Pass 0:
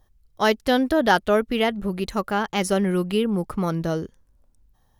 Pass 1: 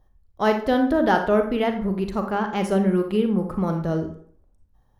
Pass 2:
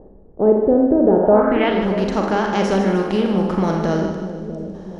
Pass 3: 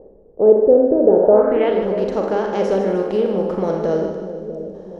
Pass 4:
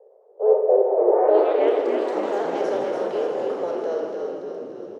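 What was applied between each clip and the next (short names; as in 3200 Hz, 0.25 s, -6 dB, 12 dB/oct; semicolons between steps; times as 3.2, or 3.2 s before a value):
high shelf 2100 Hz -11.5 dB; reverb RT60 0.55 s, pre-delay 32 ms, DRR 5 dB
per-bin compression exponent 0.6; low-pass sweep 450 Hz -> 5900 Hz, 1.19–1.86; split-band echo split 600 Hz, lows 0.642 s, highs 0.152 s, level -9.5 dB
bell 490 Hz +14 dB 0.94 oct; gain -8 dB
steep high-pass 400 Hz 96 dB/oct; on a send: frequency-shifting echo 0.288 s, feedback 60%, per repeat -37 Hz, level -5 dB; on the sum: echoes that change speed 0.104 s, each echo +3 st, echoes 2, each echo -6 dB; gain -6.5 dB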